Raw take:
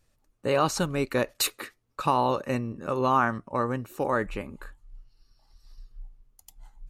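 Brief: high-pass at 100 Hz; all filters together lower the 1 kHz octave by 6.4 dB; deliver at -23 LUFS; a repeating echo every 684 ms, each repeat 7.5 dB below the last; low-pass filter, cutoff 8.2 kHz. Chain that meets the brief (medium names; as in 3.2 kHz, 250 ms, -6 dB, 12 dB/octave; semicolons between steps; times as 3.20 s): high-pass 100 Hz; low-pass 8.2 kHz; peaking EQ 1 kHz -8 dB; feedback delay 684 ms, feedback 42%, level -7.5 dB; trim +7 dB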